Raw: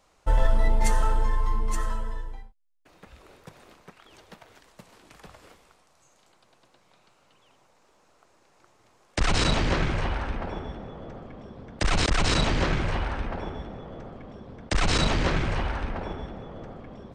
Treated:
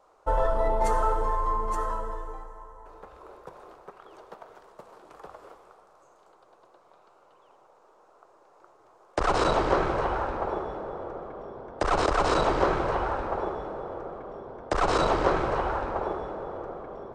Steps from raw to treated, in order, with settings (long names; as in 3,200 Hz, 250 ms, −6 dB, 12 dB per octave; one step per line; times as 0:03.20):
flat-topped bell 690 Hz +14.5 dB 2.4 octaves
dense smooth reverb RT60 4.6 s, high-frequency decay 0.65×, pre-delay 0 ms, DRR 9.5 dB
level −8.5 dB